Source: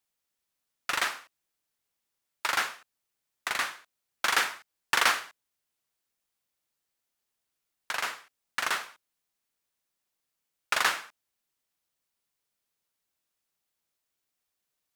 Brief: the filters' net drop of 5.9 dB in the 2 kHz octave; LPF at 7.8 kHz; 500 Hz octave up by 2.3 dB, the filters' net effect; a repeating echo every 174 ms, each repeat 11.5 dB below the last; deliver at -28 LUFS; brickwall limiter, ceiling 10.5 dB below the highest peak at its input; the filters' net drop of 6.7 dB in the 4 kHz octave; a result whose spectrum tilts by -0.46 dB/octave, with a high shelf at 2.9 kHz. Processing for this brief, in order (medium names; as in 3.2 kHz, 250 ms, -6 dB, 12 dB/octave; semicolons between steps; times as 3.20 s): low-pass 7.8 kHz; peaking EQ 500 Hz +3.5 dB; peaking EQ 2 kHz -6 dB; treble shelf 2.9 kHz -3 dB; peaking EQ 4 kHz -4 dB; peak limiter -23.5 dBFS; feedback delay 174 ms, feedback 27%, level -11.5 dB; trim +10.5 dB